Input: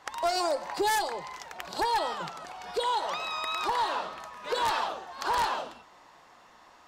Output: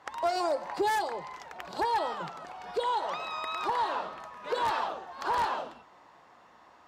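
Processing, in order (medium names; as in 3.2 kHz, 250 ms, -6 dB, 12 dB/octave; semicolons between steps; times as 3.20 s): high-pass 57 Hz; treble shelf 3 kHz -10 dB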